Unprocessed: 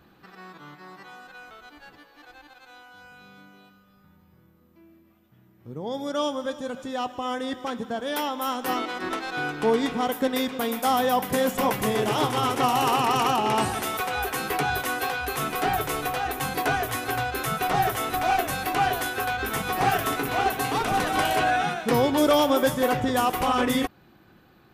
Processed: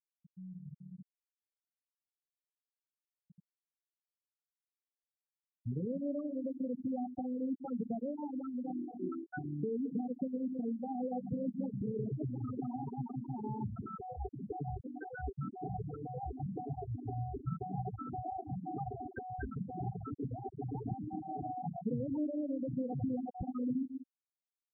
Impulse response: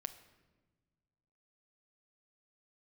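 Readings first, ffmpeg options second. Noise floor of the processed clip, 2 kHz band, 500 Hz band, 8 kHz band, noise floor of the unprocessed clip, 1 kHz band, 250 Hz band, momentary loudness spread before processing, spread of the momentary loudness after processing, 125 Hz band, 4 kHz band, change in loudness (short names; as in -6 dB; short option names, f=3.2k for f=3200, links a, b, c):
under -85 dBFS, -29.0 dB, -16.5 dB, under -40 dB, -58 dBFS, -20.0 dB, -7.5 dB, 10 LU, 7 LU, -5.0 dB, under -40 dB, -14.5 dB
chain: -filter_complex "[0:a]highpass=f=140:p=1,equalizer=f=5.8k:t=o:w=0.31:g=5.5,alimiter=limit=-21dB:level=0:latency=1:release=492,bass=f=250:g=11,treble=f=4k:g=-15,asplit=2[a][b];[b]adelay=60,lowpass=f=820:p=1,volume=-17.5dB,asplit=2[c][d];[d]adelay=60,lowpass=f=820:p=1,volume=0.4,asplit=2[e][f];[f]adelay=60,lowpass=f=820:p=1,volume=0.4[g];[a][c][e][g]amix=inputs=4:normalize=0,asplit=2[h][i];[1:a]atrim=start_sample=2205,highshelf=f=7.2k:g=-4,adelay=142[j];[i][j]afir=irnorm=-1:irlink=0,volume=-9dB[k];[h][k]amix=inputs=2:normalize=0,acrossover=split=480|3000[l][m][n];[m]acompressor=threshold=-39dB:ratio=3[o];[l][o][n]amix=inputs=3:normalize=0,asplit=2[p][q];[q]adelay=16,volume=-12dB[r];[p][r]amix=inputs=2:normalize=0,acompressor=threshold=-37dB:ratio=2.5,afftfilt=real='re*gte(hypot(re,im),0.0631)':imag='im*gte(hypot(re,im),0.0631)':win_size=1024:overlap=0.75,volume=1.5dB"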